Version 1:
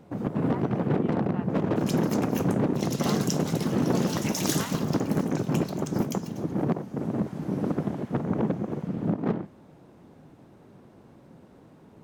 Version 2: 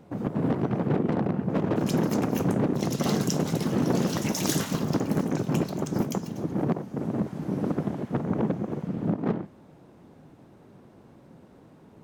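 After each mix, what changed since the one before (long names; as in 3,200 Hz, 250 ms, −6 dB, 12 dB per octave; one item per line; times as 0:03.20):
speech −7.5 dB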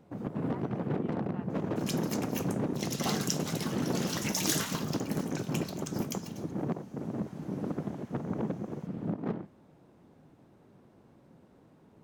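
first sound −7.0 dB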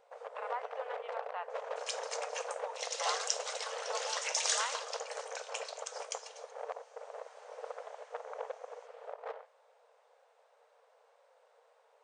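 speech +9.5 dB
master: add linear-phase brick-wall band-pass 440–9,400 Hz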